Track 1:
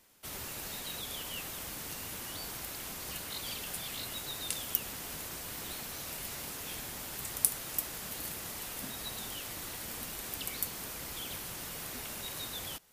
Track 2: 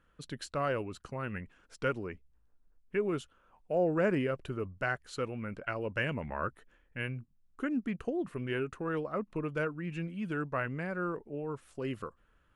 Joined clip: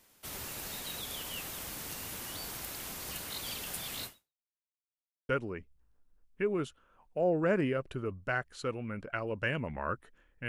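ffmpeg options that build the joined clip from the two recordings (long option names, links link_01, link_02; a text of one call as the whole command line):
ffmpeg -i cue0.wav -i cue1.wav -filter_complex "[0:a]apad=whole_dur=10.48,atrim=end=10.48,asplit=2[link_01][link_02];[link_01]atrim=end=4.48,asetpts=PTS-STARTPTS,afade=type=out:start_time=4.05:duration=0.43:curve=exp[link_03];[link_02]atrim=start=4.48:end=5.29,asetpts=PTS-STARTPTS,volume=0[link_04];[1:a]atrim=start=1.83:end=7.02,asetpts=PTS-STARTPTS,afade=type=in:duration=0.004:curve=hsin[link_05];[link_03][link_04][link_05]concat=n=3:v=0:a=1" out.wav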